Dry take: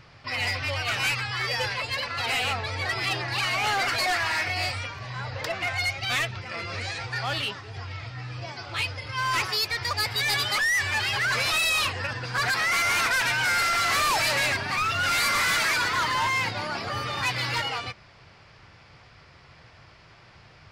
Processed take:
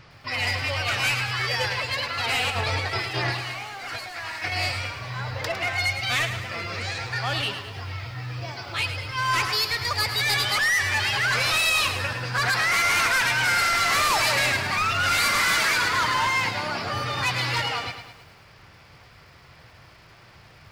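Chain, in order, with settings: 2.5–4.52 negative-ratio compressor -31 dBFS, ratio -0.5; lo-fi delay 0.106 s, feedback 55%, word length 9-bit, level -9 dB; gain +1.5 dB

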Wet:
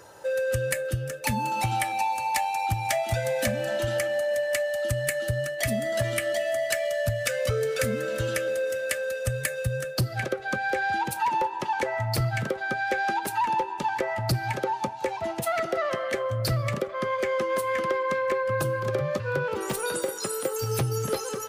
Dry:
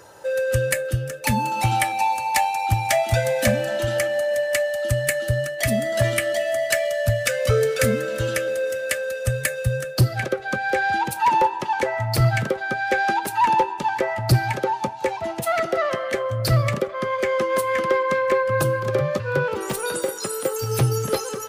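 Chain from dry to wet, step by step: compressor, threshold -20 dBFS, peak gain reduction 8 dB; gain -2.5 dB

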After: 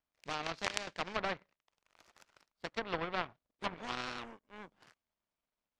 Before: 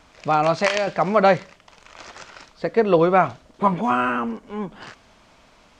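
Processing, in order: power-law curve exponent 2; treble ducked by the level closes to 2000 Hz, closed at -20 dBFS; spectral compressor 2:1; gain -4 dB

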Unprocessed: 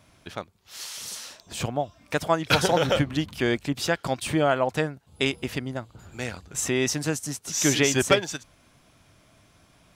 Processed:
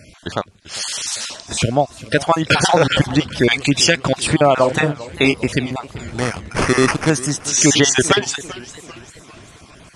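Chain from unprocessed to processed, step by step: random spectral dropouts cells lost 27%; 3.51–3.98 resonant high shelf 1900 Hz +8 dB, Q 1.5; in parallel at -1.5 dB: compressor, threshold -38 dBFS, peak gain reduction 20.5 dB; 4.54–5.34 on the sum: doubler 34 ms -7 dB; 6.08–7.1 sample-rate reducer 3800 Hz, jitter 0%; downsampling 22050 Hz; maximiser +11 dB; warbling echo 0.396 s, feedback 49%, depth 158 cents, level -18 dB; gain -1 dB

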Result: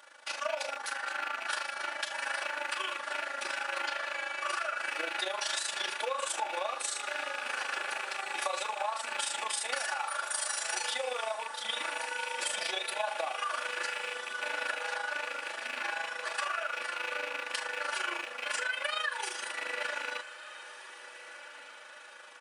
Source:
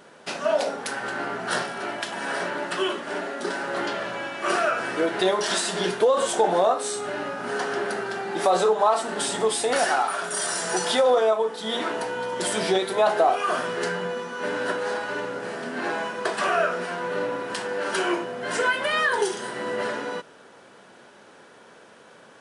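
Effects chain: rattling part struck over -40 dBFS, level -23 dBFS; HPF 970 Hz 12 dB/oct; comb 3.5 ms, depth 92%; compressor, threshold -26 dBFS, peak gain reduction 10.5 dB; AM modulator 26 Hz, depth 55%; diffused feedback echo 1.599 s, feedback 49%, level -14 dB; gain -1.5 dB

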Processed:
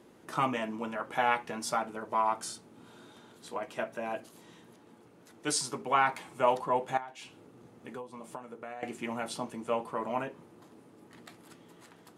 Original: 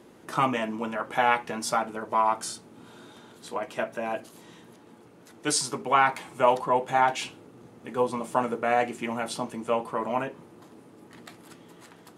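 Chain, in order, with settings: 6.97–8.83 compressor 16:1, threshold -34 dBFS, peak gain reduction 18 dB; gain -5 dB

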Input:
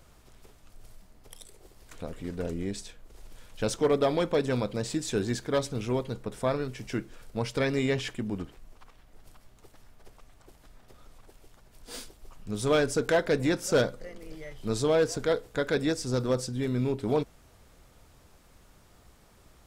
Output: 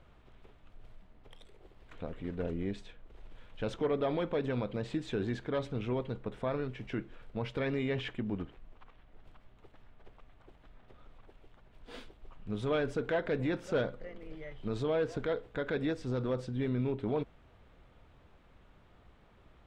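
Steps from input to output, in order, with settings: band shelf 7500 Hz -14 dB; limiter -21 dBFS, peak gain reduction 5 dB; air absorption 62 m; gain -2.5 dB

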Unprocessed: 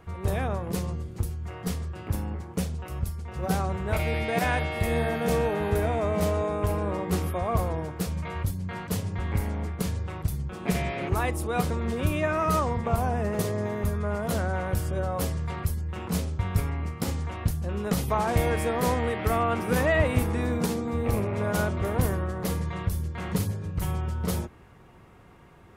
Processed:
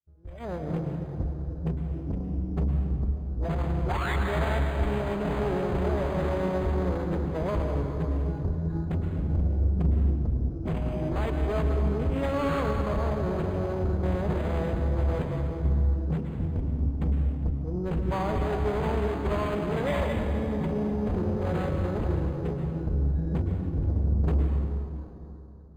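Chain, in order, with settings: Wiener smoothing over 41 samples; bell 61 Hz +4 dB 0.85 oct; expander -40 dBFS; AGC gain up to 15.5 dB; dark delay 0.271 s, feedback 38%, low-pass 420 Hz, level -14 dB; spectral noise reduction 16 dB; painted sound rise, 3.89–4.16, 750–2200 Hz -14 dBFS; tube stage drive 19 dB, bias 0.2; on a send at -3.5 dB: high shelf 4600 Hz +6.5 dB + reverb RT60 3.5 s, pre-delay 97 ms; on the sum: formant-preserving pitch shift -2 st; decimation joined by straight lines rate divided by 8×; gain -6 dB

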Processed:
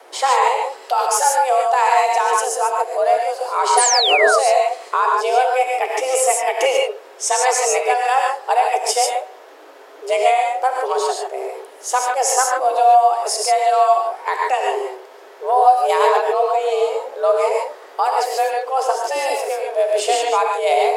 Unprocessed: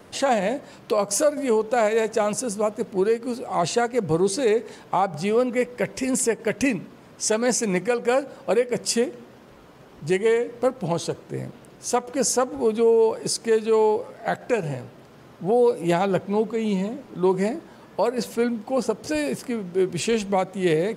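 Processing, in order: non-linear reverb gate 0.17 s rising, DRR -0.5 dB; painted sound fall, 3.77–4.39, 880–10000 Hz -20 dBFS; frequency shift +260 Hz; gain +3 dB

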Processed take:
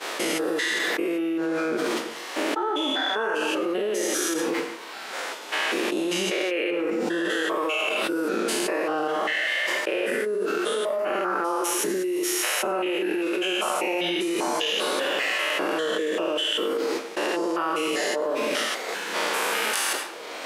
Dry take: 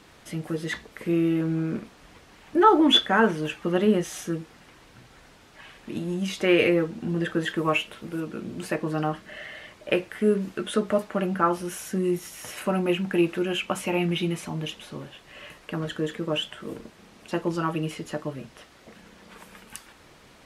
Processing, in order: stepped spectrum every 0.2 s; HPF 360 Hz 24 dB/oct; expander -48 dBFS; reverb removal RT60 1.1 s; flange 0.27 Hz, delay 1.2 ms, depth 5.5 ms, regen +83%; on a send at -12 dB: reverb RT60 0.60 s, pre-delay 78 ms; on the sum: fast leveller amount 100%

